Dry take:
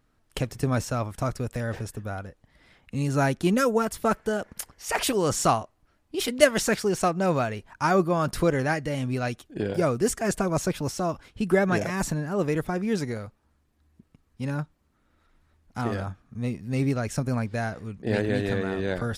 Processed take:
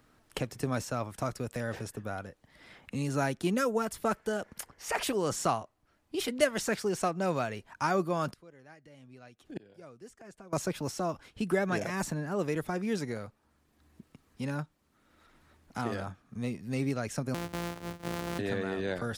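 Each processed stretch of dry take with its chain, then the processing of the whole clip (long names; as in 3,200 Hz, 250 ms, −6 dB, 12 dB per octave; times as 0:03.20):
0:08.30–0:10.53: high-shelf EQ 10,000 Hz −9.5 dB + gate with flip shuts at −24 dBFS, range −28 dB
0:17.34–0:18.39: samples sorted by size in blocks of 256 samples + downward compressor 4 to 1, threshold −26 dBFS
whole clip: low-shelf EQ 86 Hz −10.5 dB; multiband upward and downward compressor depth 40%; level −5 dB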